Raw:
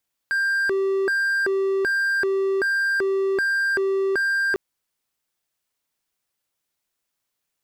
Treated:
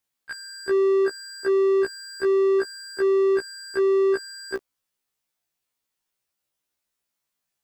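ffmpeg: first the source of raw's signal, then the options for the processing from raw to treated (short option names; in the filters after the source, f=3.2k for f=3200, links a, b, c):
-f lavfi -i "aevalsrc='0.141*(1-4*abs(mod((989*t+601/1.3*(0.5-abs(mod(1.3*t,1)-0.5)))+0.25,1)-0.5))':d=4.25:s=44100"
-af "afftfilt=real='re*1.73*eq(mod(b,3),0)':imag='im*1.73*eq(mod(b,3),0)':win_size=2048:overlap=0.75"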